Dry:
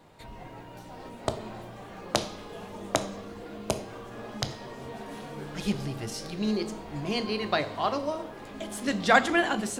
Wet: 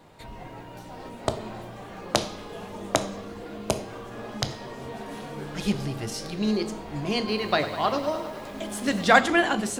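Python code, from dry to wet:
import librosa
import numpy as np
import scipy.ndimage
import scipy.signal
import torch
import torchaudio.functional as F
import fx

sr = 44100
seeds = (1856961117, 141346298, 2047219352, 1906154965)

y = fx.echo_crushed(x, sr, ms=101, feedback_pct=80, bits=8, wet_db=-13.0, at=(7.18, 9.2))
y = F.gain(torch.from_numpy(y), 3.0).numpy()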